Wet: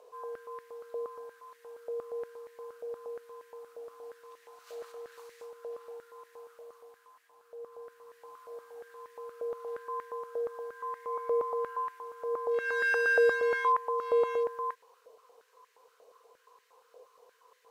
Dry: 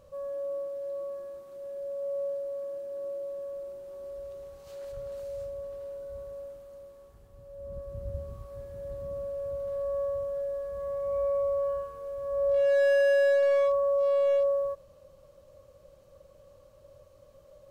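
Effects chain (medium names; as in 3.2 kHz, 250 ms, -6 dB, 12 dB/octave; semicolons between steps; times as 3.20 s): frequency shift -90 Hz; step-sequenced high-pass 8.5 Hz 650–1800 Hz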